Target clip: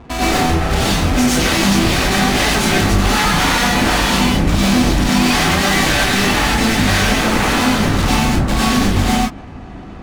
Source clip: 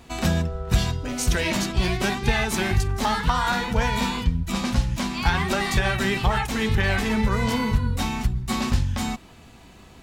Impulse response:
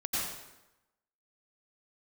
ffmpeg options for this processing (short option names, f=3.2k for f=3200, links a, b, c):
-filter_complex "[0:a]aeval=exprs='0.376*sin(PI/2*5.62*val(0)/0.376)':c=same,aeval=exprs='0.398*(cos(1*acos(clip(val(0)/0.398,-1,1)))-cos(1*PI/2))+0.126*(cos(7*acos(clip(val(0)/0.398,-1,1)))-cos(7*PI/2))':c=same,adynamicsmooth=sensitivity=3:basefreq=550[a];[1:a]atrim=start_sample=2205,afade=t=out:st=0.19:d=0.01,atrim=end_sample=8820[b];[a][b]afir=irnorm=-1:irlink=0,volume=-6.5dB"